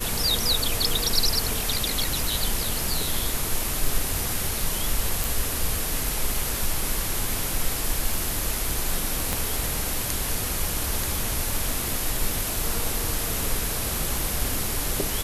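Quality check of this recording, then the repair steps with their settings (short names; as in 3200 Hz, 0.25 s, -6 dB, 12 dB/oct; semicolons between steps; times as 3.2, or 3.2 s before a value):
5.24 pop
9.33 pop -9 dBFS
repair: de-click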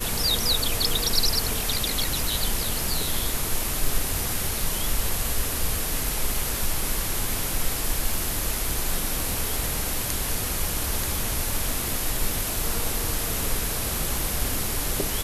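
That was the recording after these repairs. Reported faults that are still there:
9.33 pop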